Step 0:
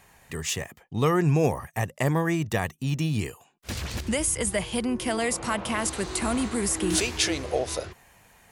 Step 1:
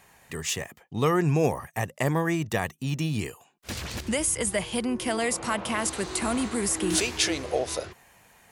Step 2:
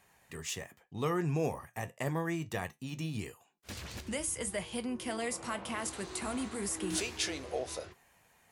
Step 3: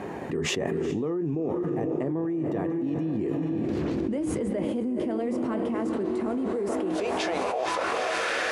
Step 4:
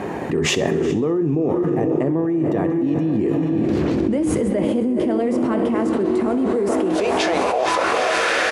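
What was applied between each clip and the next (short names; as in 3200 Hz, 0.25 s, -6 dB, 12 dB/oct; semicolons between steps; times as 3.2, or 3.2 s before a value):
low shelf 84 Hz -8.5 dB
flange 0.29 Hz, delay 9.9 ms, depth 2.8 ms, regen -65%; gain -5 dB
diffused feedback echo 0.461 s, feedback 48%, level -9 dB; band-pass sweep 320 Hz -> 1500 Hz, 6.18–8.27; fast leveller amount 100%; gain +4.5 dB
feedback echo 65 ms, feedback 56%, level -17 dB; gain +8.5 dB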